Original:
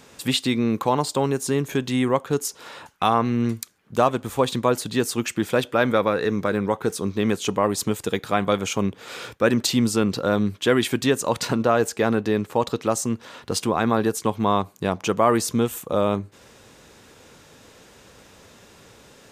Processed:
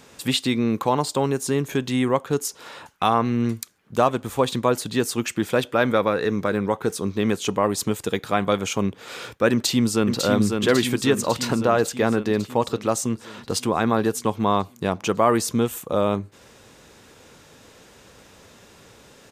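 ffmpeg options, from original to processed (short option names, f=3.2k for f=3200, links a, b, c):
-filter_complex "[0:a]asplit=2[a][b];[b]afade=t=in:st=9.52:d=0.01,afade=t=out:st=10.23:d=0.01,aecho=0:1:550|1100|1650|2200|2750|3300|3850|4400|4950|5500:0.595662|0.38718|0.251667|0.163584|0.106329|0.0691141|0.0449242|0.0292007|0.0189805|0.0123373[c];[a][c]amix=inputs=2:normalize=0"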